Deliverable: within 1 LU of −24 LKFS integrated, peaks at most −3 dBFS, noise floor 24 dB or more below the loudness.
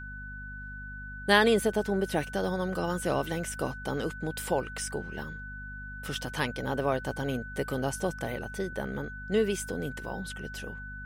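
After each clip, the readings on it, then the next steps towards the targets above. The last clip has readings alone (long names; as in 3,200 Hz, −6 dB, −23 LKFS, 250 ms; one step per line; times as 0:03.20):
mains hum 50 Hz; hum harmonics up to 250 Hz; level of the hum −41 dBFS; interfering tone 1,500 Hz; level of the tone −41 dBFS; integrated loudness −31.5 LKFS; sample peak −9.0 dBFS; target loudness −24.0 LKFS
→ hum removal 50 Hz, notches 5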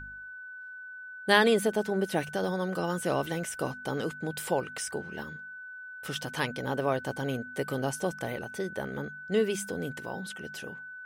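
mains hum none found; interfering tone 1,500 Hz; level of the tone −41 dBFS
→ notch filter 1,500 Hz, Q 30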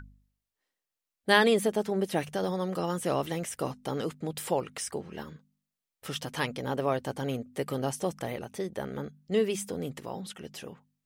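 interfering tone none found; integrated loudness −31.0 LKFS; sample peak −9.0 dBFS; target loudness −24.0 LKFS
→ level +7 dB
brickwall limiter −3 dBFS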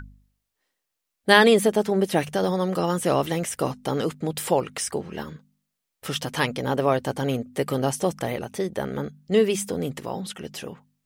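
integrated loudness −24.0 LKFS; sample peak −3.0 dBFS; background noise floor −82 dBFS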